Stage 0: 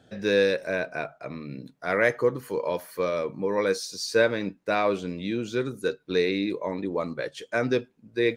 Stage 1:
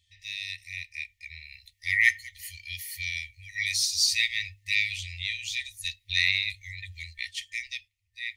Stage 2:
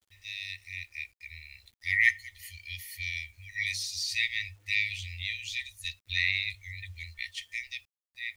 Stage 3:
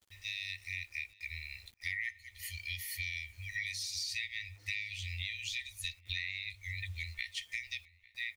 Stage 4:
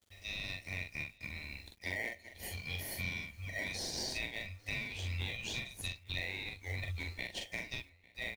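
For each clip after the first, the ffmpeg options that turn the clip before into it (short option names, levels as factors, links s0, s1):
-af "afftfilt=real='re*(1-between(b*sr/4096,100,1800))':imag='im*(1-between(b*sr/4096,100,1800))':win_size=4096:overlap=0.75,bandreject=f=50:t=h:w=6,bandreject=f=100:t=h:w=6,bandreject=f=150:t=h:w=6,bandreject=f=200:t=h:w=6,bandreject=f=250:t=h:w=6,dynaudnorm=f=160:g=13:m=4.47,volume=0.668"
-filter_complex "[0:a]equalizer=f=9300:t=o:w=2.6:g=-6.5,acrossover=split=150|3300[s0][s1][s2];[s2]alimiter=level_in=1.33:limit=0.0631:level=0:latency=1:release=91,volume=0.75[s3];[s0][s1][s3]amix=inputs=3:normalize=0,acrusher=bits=10:mix=0:aa=0.000001"
-filter_complex "[0:a]acompressor=threshold=0.0112:ratio=8,asplit=2[s0][s1];[s1]adelay=849,lowpass=f=3500:p=1,volume=0.0794,asplit=2[s2][s3];[s3]adelay=849,lowpass=f=3500:p=1,volume=0.47,asplit=2[s4][s5];[s5]adelay=849,lowpass=f=3500:p=1,volume=0.47[s6];[s0][s2][s4][s6]amix=inputs=4:normalize=0,volume=1.5"
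-filter_complex "[0:a]asplit=2[s0][s1];[s1]acrusher=samples=35:mix=1:aa=0.000001,volume=0.501[s2];[s0][s2]amix=inputs=2:normalize=0,asplit=2[s3][s4];[s4]adelay=44,volume=0.631[s5];[s3][s5]amix=inputs=2:normalize=0,volume=0.708"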